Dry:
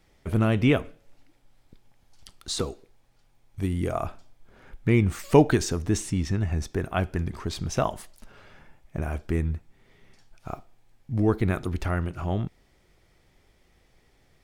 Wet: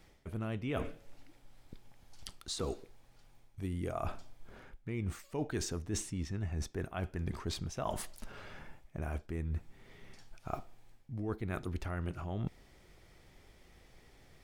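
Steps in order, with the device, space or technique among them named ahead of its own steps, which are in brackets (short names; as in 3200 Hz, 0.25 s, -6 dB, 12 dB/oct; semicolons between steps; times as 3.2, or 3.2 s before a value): compression on the reversed sound (reverse; compressor 16:1, threshold -35 dBFS, peak gain reduction 25 dB; reverse); gain +2 dB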